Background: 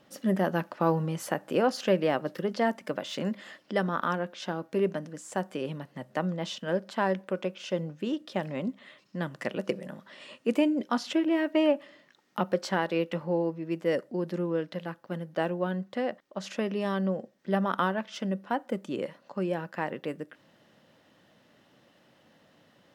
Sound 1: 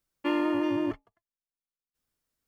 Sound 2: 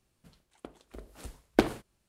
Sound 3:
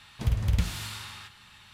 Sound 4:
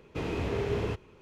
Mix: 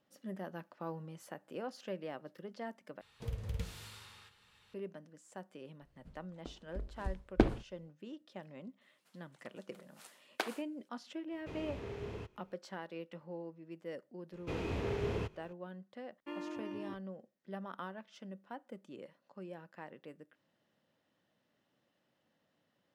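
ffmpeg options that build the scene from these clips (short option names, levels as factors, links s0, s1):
-filter_complex "[2:a]asplit=2[s0][s1];[4:a]asplit=2[s2][s3];[0:a]volume=0.141[s4];[3:a]equalizer=f=470:t=o:w=0.37:g=14.5[s5];[s0]aemphasis=mode=reproduction:type=bsi[s6];[s1]highpass=900[s7];[s4]asplit=2[s8][s9];[s8]atrim=end=3.014[s10];[s5]atrim=end=1.73,asetpts=PTS-STARTPTS,volume=0.2[s11];[s9]atrim=start=4.736[s12];[s6]atrim=end=2.08,asetpts=PTS-STARTPTS,volume=0.473,afade=t=in:d=0.004:c=hsin,afade=t=out:st=2.076:d=0.004:c=hsin,adelay=256221S[s13];[s7]atrim=end=2.08,asetpts=PTS-STARTPTS,volume=0.596,afade=t=in:d=0.004:c=hsin,afade=t=out:st=2.076:d=0.004:c=hsin,adelay=8810[s14];[s2]atrim=end=1.21,asetpts=PTS-STARTPTS,volume=0.224,afade=t=in:d=0.004:c=hsin,afade=t=out:st=1.206:d=0.004:c=hsin,adelay=11310[s15];[s3]atrim=end=1.21,asetpts=PTS-STARTPTS,volume=0.531,afade=t=in:d=0.004:c=hsin,afade=t=out:st=1.206:d=0.004:c=hsin,adelay=14320[s16];[1:a]atrim=end=2.47,asetpts=PTS-STARTPTS,volume=0.15,afade=t=in:d=0.004:c=hsin,afade=t=out:st=2.466:d=0.004:c=hsin,adelay=16020[s17];[s10][s11]acrossfade=d=0.004:c1=hsin:c2=hsin[s18];[s18][s12]acrossfade=d=0.004:c1=hsin:c2=hsin[s19];[s19][s13][s14][s15][s16][s17]amix=inputs=6:normalize=0"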